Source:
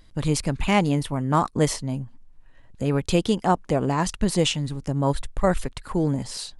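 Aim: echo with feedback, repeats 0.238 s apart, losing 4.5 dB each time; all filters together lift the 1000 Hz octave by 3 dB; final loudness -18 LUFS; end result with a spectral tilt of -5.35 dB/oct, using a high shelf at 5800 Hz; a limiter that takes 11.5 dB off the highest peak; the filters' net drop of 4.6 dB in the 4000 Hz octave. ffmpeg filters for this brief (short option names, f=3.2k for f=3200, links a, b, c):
-af "equalizer=f=1k:t=o:g=4,equalizer=f=4k:t=o:g=-8.5,highshelf=f=5.8k:g=4,alimiter=limit=-17.5dB:level=0:latency=1,aecho=1:1:238|476|714|952|1190|1428|1666|1904|2142:0.596|0.357|0.214|0.129|0.0772|0.0463|0.0278|0.0167|0.01,volume=9dB"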